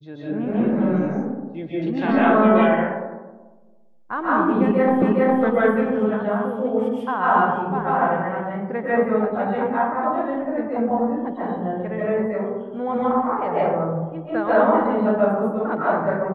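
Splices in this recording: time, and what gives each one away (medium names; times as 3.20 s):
5.02 s: repeat of the last 0.41 s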